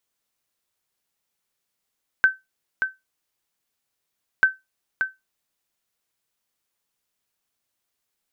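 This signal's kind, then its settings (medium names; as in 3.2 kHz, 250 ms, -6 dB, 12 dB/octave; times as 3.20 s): sonar ping 1.54 kHz, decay 0.19 s, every 2.19 s, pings 2, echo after 0.58 s, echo -7 dB -7.5 dBFS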